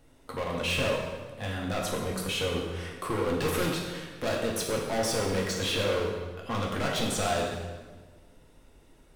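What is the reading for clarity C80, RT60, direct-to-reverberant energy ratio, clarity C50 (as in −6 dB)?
4.5 dB, 1.4 s, −1.5 dB, 2.5 dB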